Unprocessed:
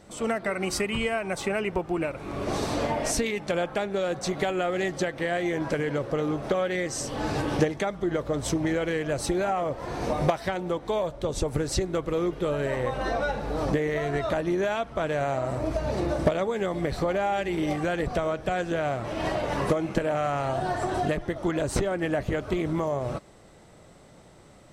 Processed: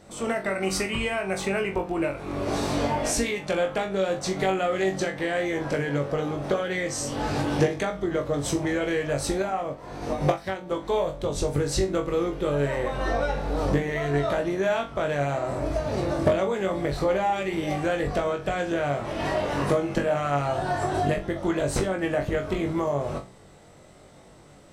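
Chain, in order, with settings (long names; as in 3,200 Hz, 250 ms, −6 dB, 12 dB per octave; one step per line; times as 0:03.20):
hum removal 62.19 Hz, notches 5
on a send: flutter between parallel walls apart 3.6 metres, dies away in 0.25 s
0:09.42–0:10.71: on the sum: expander for the loud parts 1.5 to 1, over −34 dBFS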